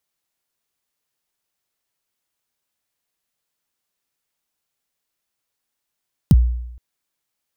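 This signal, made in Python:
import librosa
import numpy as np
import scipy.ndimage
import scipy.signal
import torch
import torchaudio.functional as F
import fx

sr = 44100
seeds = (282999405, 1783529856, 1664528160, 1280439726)

y = fx.drum_kick(sr, seeds[0], length_s=0.47, level_db=-5.0, start_hz=220.0, end_hz=60.0, sweep_ms=36.0, decay_s=0.86, click=True)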